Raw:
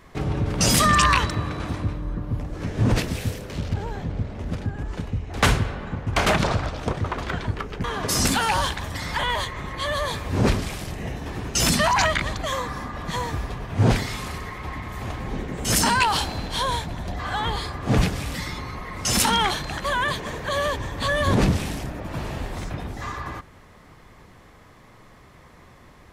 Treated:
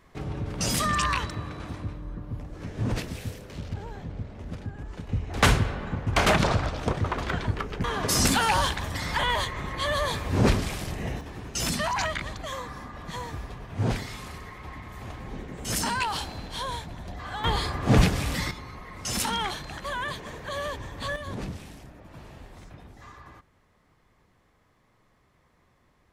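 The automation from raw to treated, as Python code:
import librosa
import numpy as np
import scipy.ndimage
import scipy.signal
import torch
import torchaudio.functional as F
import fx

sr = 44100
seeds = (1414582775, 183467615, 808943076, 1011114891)

y = fx.gain(x, sr, db=fx.steps((0.0, -8.0), (5.09, -1.0), (11.21, -8.0), (17.44, 1.0), (18.51, -8.0), (21.16, -15.5)))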